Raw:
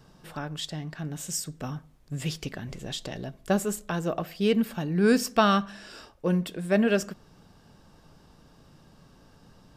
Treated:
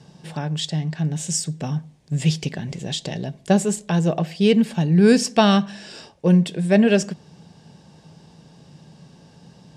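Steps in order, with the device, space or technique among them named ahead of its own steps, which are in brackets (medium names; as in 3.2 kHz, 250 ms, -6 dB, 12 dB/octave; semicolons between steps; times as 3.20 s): car door speaker (cabinet simulation 110–9400 Hz, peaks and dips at 160 Hz +7 dB, 290 Hz -4 dB, 840 Hz +4 dB, 1.3 kHz -9 dB); peaking EQ 1 kHz -4.5 dB 1.6 oct; trim +8 dB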